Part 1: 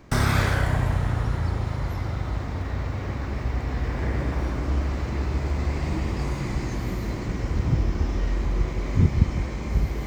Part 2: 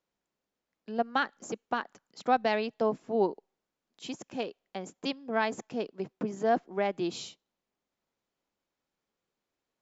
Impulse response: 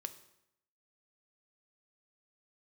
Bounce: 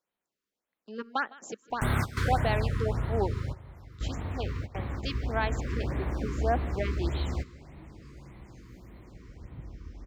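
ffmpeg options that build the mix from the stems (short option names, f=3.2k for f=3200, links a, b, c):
-filter_complex "[0:a]adelay=1700,volume=-5.5dB,asplit=2[a][b];[b]volume=-16dB[c];[1:a]lowshelf=f=350:g=-7,volume=-0.5dB,asplit=3[d][e][f];[e]volume=-21.5dB[g];[f]apad=whole_len=518834[h];[a][h]sidechaingate=range=-33dB:threshold=-60dB:ratio=16:detection=peak[i];[c][g]amix=inputs=2:normalize=0,aecho=0:1:157|314|471|628|785:1|0.37|0.137|0.0507|0.0187[j];[i][d][j]amix=inputs=3:normalize=0,afftfilt=real='re*(1-between(b*sr/1024,660*pow(6400/660,0.5+0.5*sin(2*PI*1.7*pts/sr))/1.41,660*pow(6400/660,0.5+0.5*sin(2*PI*1.7*pts/sr))*1.41))':imag='im*(1-between(b*sr/1024,660*pow(6400/660,0.5+0.5*sin(2*PI*1.7*pts/sr))/1.41,660*pow(6400/660,0.5+0.5*sin(2*PI*1.7*pts/sr))*1.41))':win_size=1024:overlap=0.75"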